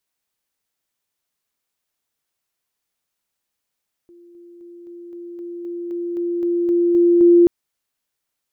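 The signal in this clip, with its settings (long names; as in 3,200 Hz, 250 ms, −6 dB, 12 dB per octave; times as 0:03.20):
level staircase 346 Hz −43.5 dBFS, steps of 3 dB, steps 13, 0.26 s 0.00 s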